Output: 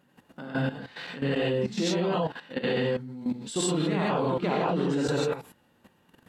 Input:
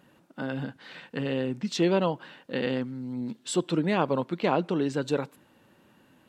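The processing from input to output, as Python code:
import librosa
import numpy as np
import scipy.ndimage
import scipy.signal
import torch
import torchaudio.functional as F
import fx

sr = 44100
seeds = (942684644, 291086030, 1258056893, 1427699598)

y = fx.rev_gated(x, sr, seeds[0], gate_ms=180, shape='rising', drr_db=-7.0)
y = fx.level_steps(y, sr, step_db=13)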